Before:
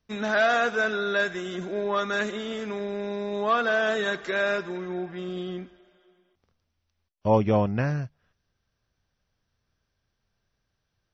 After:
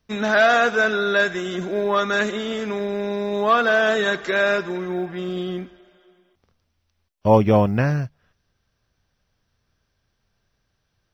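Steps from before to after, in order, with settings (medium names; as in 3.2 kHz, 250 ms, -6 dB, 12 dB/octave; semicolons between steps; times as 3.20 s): short-mantissa float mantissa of 6-bit; trim +6 dB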